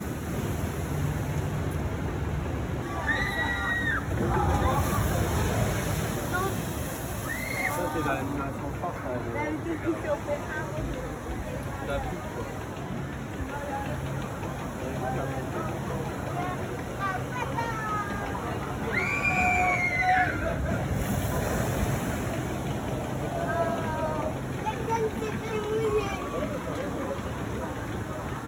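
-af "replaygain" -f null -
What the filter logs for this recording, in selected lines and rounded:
track_gain = +10.9 dB
track_peak = 0.170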